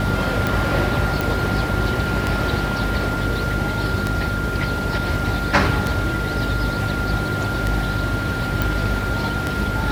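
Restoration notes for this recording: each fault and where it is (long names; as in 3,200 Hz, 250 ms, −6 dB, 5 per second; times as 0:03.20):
mains hum 50 Hz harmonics 6 −26 dBFS
scratch tick 33 1/3 rpm
whistle 1,400 Hz −26 dBFS
0:01.21: click
0:08.62: click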